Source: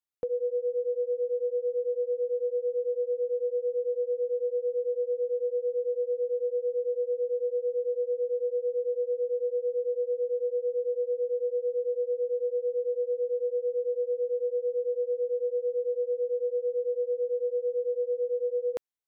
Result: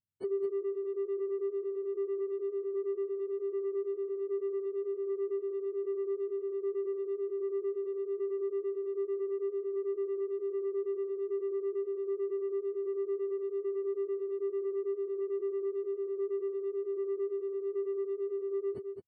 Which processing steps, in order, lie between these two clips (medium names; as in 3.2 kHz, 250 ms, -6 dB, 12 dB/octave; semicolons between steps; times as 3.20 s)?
spectrum inverted on a logarithmic axis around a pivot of 440 Hz; in parallel at -9.5 dB: saturation -34 dBFS, distortion -10 dB; on the sum: delay 215 ms -8.5 dB; trim -2.5 dB